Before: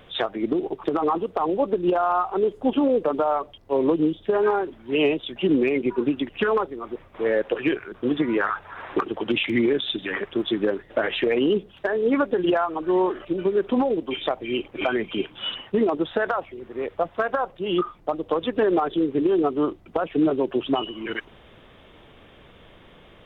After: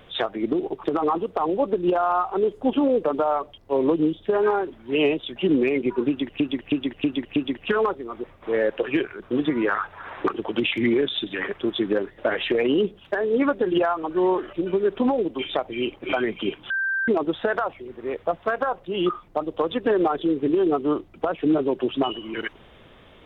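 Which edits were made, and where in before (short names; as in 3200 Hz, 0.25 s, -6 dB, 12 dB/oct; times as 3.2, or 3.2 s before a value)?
6.08–6.4 loop, 5 plays
15.42–15.8 bleep 1570 Hz -21.5 dBFS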